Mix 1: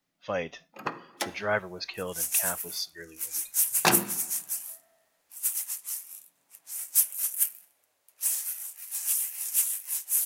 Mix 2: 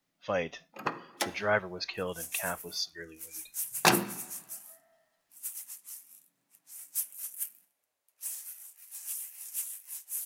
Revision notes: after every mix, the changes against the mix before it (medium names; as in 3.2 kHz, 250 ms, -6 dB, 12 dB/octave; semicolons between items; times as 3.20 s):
second sound -10.5 dB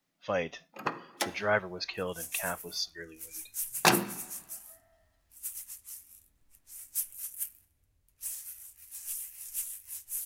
second sound: remove resonant high-pass 640 Hz, resonance Q 1.5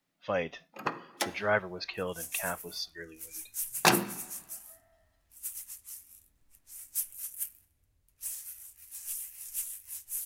speech: add low-pass 4.6 kHz